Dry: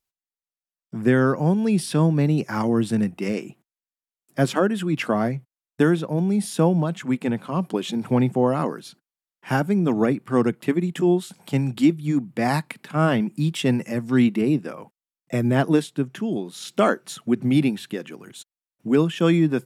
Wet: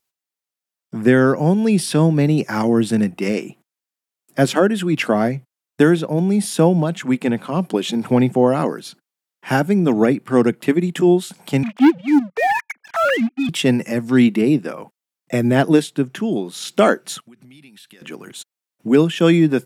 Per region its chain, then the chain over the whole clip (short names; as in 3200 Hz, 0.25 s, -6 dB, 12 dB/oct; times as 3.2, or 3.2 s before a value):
11.63–13.49 sine-wave speech + HPF 610 Hz 6 dB/oct + sample leveller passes 3
17.2–18.02 passive tone stack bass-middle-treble 5-5-5 + notch 6900 Hz + compressor 16:1, threshold -46 dBFS
whole clip: HPF 170 Hz 6 dB/oct; dynamic EQ 1100 Hz, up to -5 dB, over -41 dBFS, Q 2.5; gain +6.5 dB